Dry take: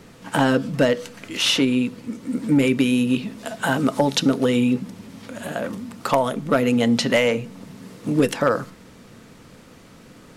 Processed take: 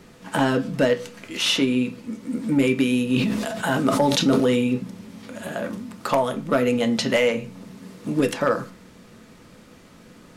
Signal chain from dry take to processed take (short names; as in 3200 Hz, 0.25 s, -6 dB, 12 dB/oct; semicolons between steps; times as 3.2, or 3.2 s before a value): on a send at -7 dB: reverb RT60 0.35 s, pre-delay 3 ms; 3.06–4.67 on the sum: sustainer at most 28 dB/s; gain -2.5 dB